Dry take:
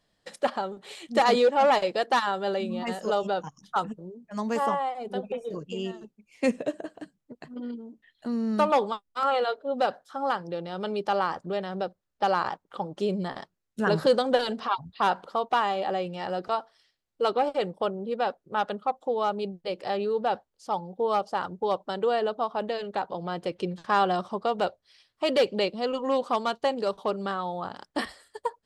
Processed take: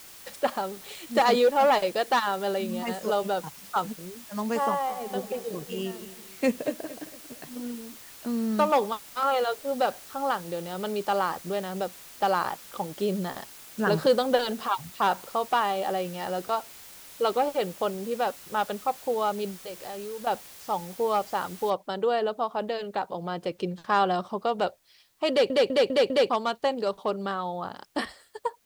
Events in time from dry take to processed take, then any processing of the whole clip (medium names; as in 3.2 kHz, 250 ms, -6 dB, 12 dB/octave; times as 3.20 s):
4.65–7.78 s: feedback delay 228 ms, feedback 40%, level -15 dB
19.64–20.27 s: compression 3:1, threshold -37 dBFS
21.70 s: noise floor step -47 dB -69 dB
25.30 s: stutter in place 0.20 s, 5 plays